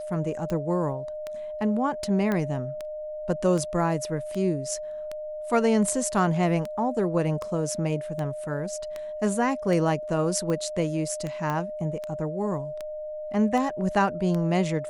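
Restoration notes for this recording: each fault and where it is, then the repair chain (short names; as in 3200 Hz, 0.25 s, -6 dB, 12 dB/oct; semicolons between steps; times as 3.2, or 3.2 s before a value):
tick 78 rpm -19 dBFS
tone 610 Hz -32 dBFS
2.32 pop -15 dBFS
11.5 pop -17 dBFS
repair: de-click; notch 610 Hz, Q 30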